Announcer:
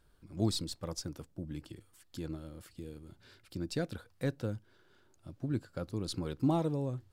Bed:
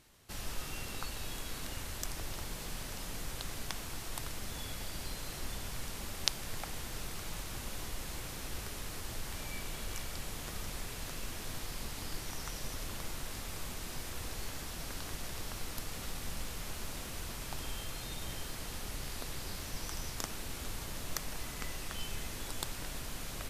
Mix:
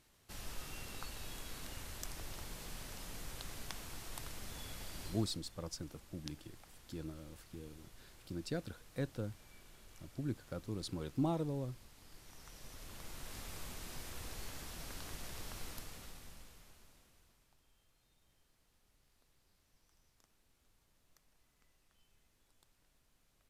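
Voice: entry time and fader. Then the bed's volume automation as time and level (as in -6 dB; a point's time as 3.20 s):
4.75 s, -5.0 dB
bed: 5.07 s -6 dB
5.43 s -19 dB
11.98 s -19 dB
13.39 s -5.5 dB
15.68 s -5.5 dB
17.61 s -33 dB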